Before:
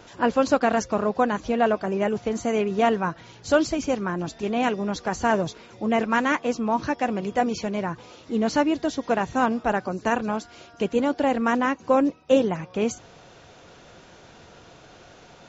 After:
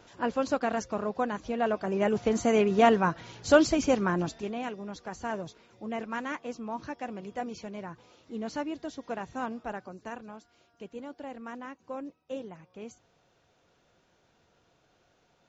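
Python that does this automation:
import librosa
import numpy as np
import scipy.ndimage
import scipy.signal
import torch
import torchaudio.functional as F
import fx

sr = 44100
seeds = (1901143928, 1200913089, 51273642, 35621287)

y = fx.gain(x, sr, db=fx.line((1.57, -8.0), (2.26, 0.0), (4.2, 0.0), (4.63, -12.5), (9.6, -12.5), (10.37, -19.0)))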